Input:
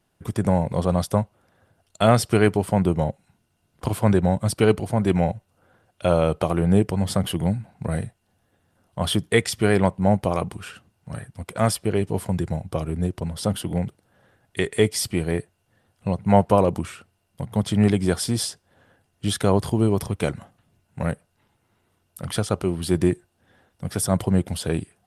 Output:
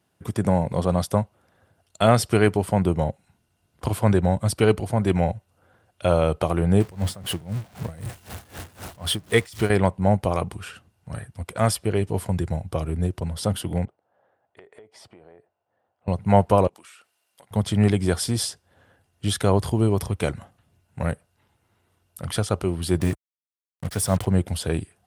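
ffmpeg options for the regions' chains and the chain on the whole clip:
-filter_complex "[0:a]asettb=1/sr,asplit=3[s0][s1][s2];[s0]atrim=end=6.804[s3];[s1]atrim=start=6.8:end=9.7,asetpts=PTS-STARTPTS,afade=t=in:d=0.004:c=qsin,afade=t=out:st=2.896:d=0.004:c=qsin,aeval=exprs='val(0)+0.5*0.0376*sgn(val(0))':c=same,aeval=exprs='val(0)*pow(10,-21*(0.5-0.5*cos(2*PI*3.9*n/s))/20)':c=same[s4];[s2]atrim=start=9.696[s5];[s3][s4]acrossfade=d=0.004:c1=hsin:c2=qsin[s6];[s6][s5]acrossfade=d=0.004:c1=qsin:c2=hsin,asettb=1/sr,asplit=3[s7][s8][s9];[s7]atrim=end=13.854[s10];[s8]atrim=start=13.85:end=16.08,asetpts=PTS-STARTPTS,afade=t=in:d=0.004:c=qsin,afade=t=out:st=2.226:d=0.004:c=qsin,bandpass=f=710:t=q:w=1.7,acompressor=threshold=0.00708:ratio=16:attack=3.2:release=140:knee=1:detection=peak[s11];[s9]atrim=start=16.076[s12];[s10][s11]acrossfade=d=0.004:c1=hsin:c2=qsin[s13];[s13][s12]acrossfade=d=0.004:c1=qsin:c2=hsin,asettb=1/sr,asplit=3[s14][s15][s16];[s14]atrim=end=16.674[s17];[s15]atrim=start=16.67:end=17.51,asetpts=PTS-STARTPTS,afade=t=in:d=0.004:c=qsin,afade=t=out:st=0.836:d=0.004:c=qsin,highpass=440,tiltshelf=f=1200:g=-4.5,acompressor=threshold=0.00355:ratio=3:attack=3.2:release=140:knee=1:detection=peak[s18];[s16]atrim=start=17.506[s19];[s17][s18]acrossfade=d=0.004:c1=hsin:c2=qsin[s20];[s20][s19]acrossfade=d=0.004:c1=qsin:c2=hsin,asettb=1/sr,asplit=3[s21][s22][s23];[s21]atrim=end=23.004[s24];[s22]atrim=start=23:end=24.27,asetpts=PTS-STARTPTS,afade=t=in:d=0.004:c=qsin,afade=t=out:st=1.266:d=0.004:c=qsin,bandreject=f=350:w=6.4,acrusher=bits=5:mix=0:aa=0.5[s25];[s23]atrim=start=24.266[s26];[s24][s25]acrossfade=d=0.004:c1=hsin:c2=qsin[s27];[s27][s26]acrossfade=d=0.004:c1=qsin:c2=hsin,highpass=61,asubboost=boost=3:cutoff=82"

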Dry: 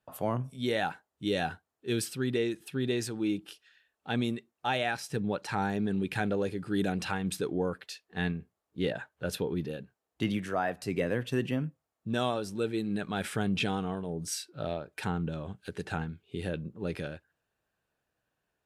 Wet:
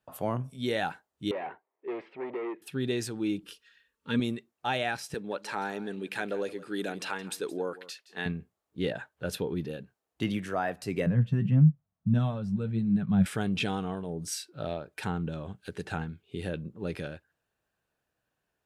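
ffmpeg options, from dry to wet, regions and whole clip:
-filter_complex "[0:a]asettb=1/sr,asplit=3[s0][s1][s2];[s0]atrim=end=1.314[s3];[s1]atrim=start=1.31:end=2.62,asetpts=PTS-STARTPTS,afade=t=in:d=0.004:c=qsin,afade=t=out:st=1.306:d=0.004:c=qsin,asoftclip=type=hard:threshold=0.0178,highpass=380,equalizer=f=380:t=q:w=4:g=9,equalizer=f=560:t=q:w=4:g=5,equalizer=f=950:t=q:w=4:g=7,equalizer=f=1500:t=q:w=4:g=-8,equalizer=f=2100:t=q:w=4:g=6,lowpass=f=2200:w=0.5412,lowpass=f=2200:w=1.3066[s4];[s2]atrim=start=2.616[s5];[s3][s4]acrossfade=d=0.004:c1=hsin:c2=qsin[s6];[s6][s5]acrossfade=d=0.004:c1=qsin:c2=hsin,asettb=1/sr,asplit=3[s7][s8][s9];[s7]atrim=end=3.434[s10];[s8]atrim=start=3.43:end=4.2,asetpts=PTS-STARTPTS,afade=t=in:d=0.004:c=qsin,afade=t=out:st=0.766:d=0.004:c=qsin,asuperstop=centerf=730:order=8:qfactor=2.7,lowshelf=f=160:g=7,aecho=1:1:4.3:0.42,atrim=end_sample=33957[s11];[s9]atrim=start=4.196[s12];[s10][s11]acrossfade=d=0.004:c1=hsin:c2=qsin[s13];[s13][s12]acrossfade=d=0.004:c1=qsin:c2=hsin,asettb=1/sr,asplit=3[s14][s15][s16];[s14]atrim=end=5.144[s17];[s15]atrim=start=5.14:end=8.26,asetpts=PTS-STARTPTS,afade=t=in:d=0.004:c=qsin,afade=t=out:st=3.116:d=0.004:c=qsin,highpass=330,bandreject=f=760:w=14,aecho=1:1:169:0.133,atrim=end_sample=137592[s18];[s16]atrim=start=8.256[s19];[s17][s18]acrossfade=d=0.004:c1=hsin:c2=qsin[s20];[s20][s19]acrossfade=d=0.004:c1=qsin:c2=hsin,asettb=1/sr,asplit=3[s21][s22][s23];[s21]atrim=end=11.064[s24];[s22]atrim=start=11.06:end=13.26,asetpts=PTS-STARTPTS,afade=t=in:d=0.004:c=qsin,afade=t=out:st=2.196:d=0.004:c=qsin,lowpass=f=1400:p=1,lowshelf=f=250:t=q:w=3:g=11,flanger=delay=6.5:depth=4.3:regen=48:speed=1.6:shape=sinusoidal[s25];[s23]atrim=start=13.256[s26];[s24][s25]acrossfade=d=0.004:c1=hsin:c2=qsin[s27];[s27][s26]acrossfade=d=0.004:c1=qsin:c2=hsin"

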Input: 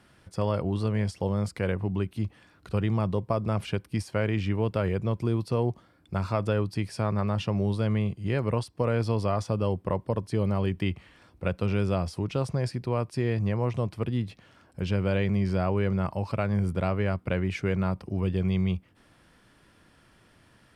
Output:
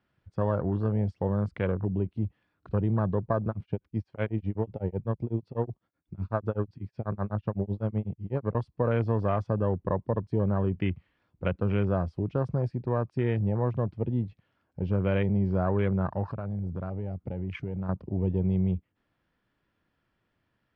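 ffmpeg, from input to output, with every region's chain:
-filter_complex "[0:a]asettb=1/sr,asplit=3[s0][s1][s2];[s0]atrim=end=3.484[s3];[s1]atrim=start=3.48:end=8.55,asetpts=PTS-STARTPTS,afade=t=in:d=0.004:c=qsin,afade=t=out:st=5.066:d=0.004:c=qsin,acrossover=split=5100[s4][s5];[s5]acompressor=threshold=0.00178:ratio=4:attack=1:release=60[s6];[s4][s6]amix=inputs=2:normalize=0,tremolo=f=8:d=0.97[s7];[s2]atrim=start=8.546[s8];[s3][s7]acrossfade=d=0.004:c1=hsin:c2=qsin[s9];[s9][s8]acrossfade=d=0.004:c1=qsin:c2=hsin,asettb=1/sr,asplit=3[s10][s11][s12];[s10]atrim=end=16.284[s13];[s11]atrim=start=16.28:end=17.89,asetpts=PTS-STARTPTS,afade=t=in:d=0.004:c=qsin,afade=t=out:st=1.606:d=0.004:c=qsin,bass=f=250:g=4,treble=f=4000:g=6,acompressor=threshold=0.0251:ratio=3:attack=3.2:release=140:knee=1:detection=peak[s14];[s12]atrim=start=17.886[s15];[s13][s14]acrossfade=d=0.004:c1=hsin:c2=qsin[s16];[s16][s15]acrossfade=d=0.004:c1=qsin:c2=hsin,afwtdn=0.0141,lowpass=3600"

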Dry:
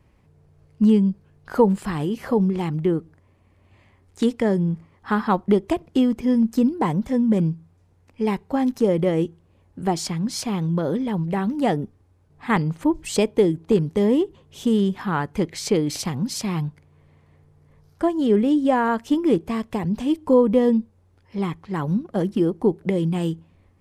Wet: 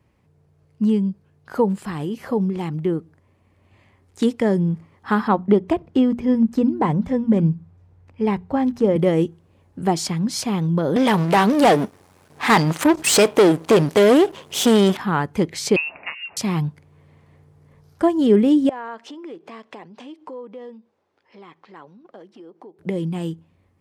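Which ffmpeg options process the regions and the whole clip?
-filter_complex "[0:a]asettb=1/sr,asplit=3[s0][s1][s2];[s0]atrim=end=5.284[s3];[s1]atrim=start=5.28:end=8.96,asetpts=PTS-STARTPTS,afade=t=in:d=0.004:c=qsin,afade=t=out:st=3.676:d=0.004:c=qsin,bandreject=f=60:t=h:w=6,bandreject=f=120:t=h:w=6,bandreject=f=180:t=h:w=6,bandreject=f=240:t=h:w=6,asubboost=boost=3.5:cutoff=130,lowpass=f=2200:p=1[s4];[s2]atrim=start=8.956[s5];[s3][s4]acrossfade=d=0.004:c1=hsin:c2=qsin[s6];[s6][s5]acrossfade=d=0.004:c1=qsin:c2=hsin,asettb=1/sr,asplit=3[s7][s8][s9];[s7]atrim=end=10.964[s10];[s8]atrim=start=10.96:end=14.97,asetpts=PTS-STARTPTS,afade=t=in:d=0.004:c=qsin,afade=t=out:st=4.006:d=0.004:c=qsin,aeval=exprs='if(lt(val(0),0),0.251*val(0),val(0))':c=same,highshelf=f=6300:g=12,asplit=2[s11][s12];[s12]highpass=f=720:p=1,volume=17.8,asoftclip=type=tanh:threshold=0.447[s13];[s11][s13]amix=inputs=2:normalize=0,lowpass=f=4500:p=1,volume=0.501[s14];[s9]atrim=start=14.966[s15];[s10][s14]acrossfade=d=0.004:c1=hsin:c2=qsin[s16];[s16][s15]acrossfade=d=0.004:c1=qsin:c2=hsin,asettb=1/sr,asplit=3[s17][s18][s19];[s17]atrim=end=15.764[s20];[s18]atrim=start=15.76:end=16.37,asetpts=PTS-STARTPTS,afade=t=in:d=0.004:c=qsin,afade=t=out:st=0.606:d=0.004:c=qsin,highpass=430,lowpass=f=2600:t=q:w=0.5098,lowpass=f=2600:t=q:w=0.6013,lowpass=f=2600:t=q:w=0.9,lowpass=f=2600:t=q:w=2.563,afreqshift=-3000[s21];[s19]atrim=start=16.366[s22];[s20][s21]acrossfade=d=0.004:c1=hsin:c2=qsin[s23];[s23][s22]acrossfade=d=0.004:c1=qsin:c2=hsin,asettb=1/sr,asplit=3[s24][s25][s26];[s24]atrim=end=18.694[s27];[s25]atrim=start=18.69:end=22.79,asetpts=PTS-STARTPTS,afade=t=in:d=0.004:c=qsin,afade=t=out:st=4.096:d=0.004:c=qsin,acompressor=threshold=0.0224:ratio=5:attack=3.2:release=140:knee=1:detection=peak,highpass=410,lowpass=4800[s28];[s26]atrim=start=22.786[s29];[s27][s28]acrossfade=d=0.004:c1=hsin:c2=qsin[s30];[s30][s29]acrossfade=d=0.004:c1=qsin:c2=hsin,highpass=73,dynaudnorm=f=220:g=31:m=2.66,volume=0.75"

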